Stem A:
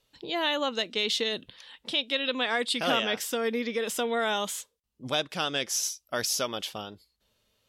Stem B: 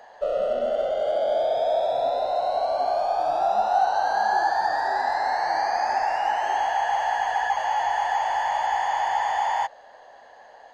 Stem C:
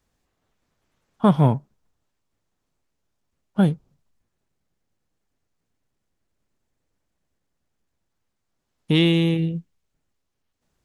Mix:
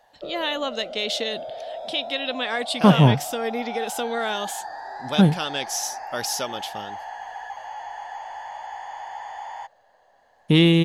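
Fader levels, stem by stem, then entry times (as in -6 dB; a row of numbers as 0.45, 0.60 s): +1.0, -11.5, +2.0 dB; 0.00, 0.00, 1.60 s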